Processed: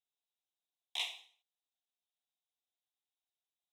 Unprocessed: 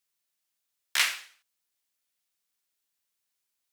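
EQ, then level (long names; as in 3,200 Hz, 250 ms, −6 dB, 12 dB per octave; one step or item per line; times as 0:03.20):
pair of resonant band-passes 1,600 Hz, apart 2.5 octaves
phaser with its sweep stopped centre 920 Hz, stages 8
+6.5 dB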